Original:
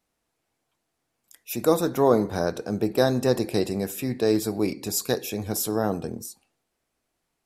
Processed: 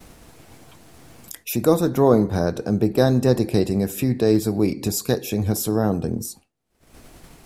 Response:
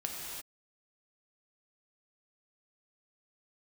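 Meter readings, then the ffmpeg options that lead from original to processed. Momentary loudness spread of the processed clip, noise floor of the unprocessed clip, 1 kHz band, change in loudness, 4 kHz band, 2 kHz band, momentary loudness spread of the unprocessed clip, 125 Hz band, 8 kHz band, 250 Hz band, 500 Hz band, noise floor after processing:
10 LU, -79 dBFS, +1.0 dB, +4.0 dB, +1.0 dB, +1.0 dB, 8 LU, +9.0 dB, +1.5 dB, +6.0 dB, +3.0 dB, -63 dBFS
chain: -af "acompressor=mode=upward:threshold=-22dB:ratio=2.5,lowshelf=f=280:g=10.5,agate=range=-33dB:threshold=-38dB:ratio=3:detection=peak"

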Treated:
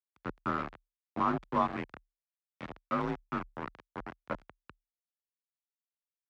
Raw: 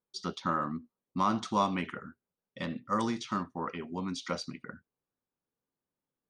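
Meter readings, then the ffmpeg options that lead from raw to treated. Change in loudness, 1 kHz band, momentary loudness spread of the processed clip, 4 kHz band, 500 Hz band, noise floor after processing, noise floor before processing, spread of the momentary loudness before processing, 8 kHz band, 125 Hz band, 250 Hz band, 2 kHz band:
-2.0 dB, -2.0 dB, 15 LU, -12.5 dB, -1.5 dB, under -85 dBFS, under -85 dBFS, 13 LU, under -20 dB, -3.5 dB, -4.0 dB, -1.0 dB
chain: -af "aeval=exprs='val(0)*gte(abs(val(0)),0.0376)':c=same,afreqshift=35,lowpass=1.7k"

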